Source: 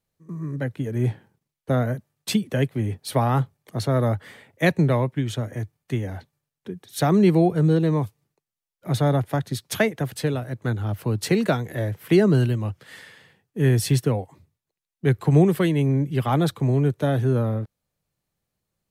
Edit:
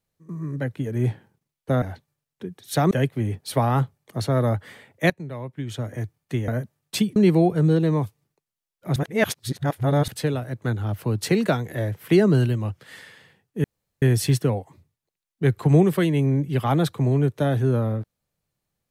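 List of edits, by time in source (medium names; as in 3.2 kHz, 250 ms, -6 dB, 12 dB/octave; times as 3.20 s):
1.82–2.50 s: swap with 6.07–7.16 s
4.69–5.51 s: fade in quadratic, from -17 dB
8.96–10.08 s: reverse
13.64 s: insert room tone 0.38 s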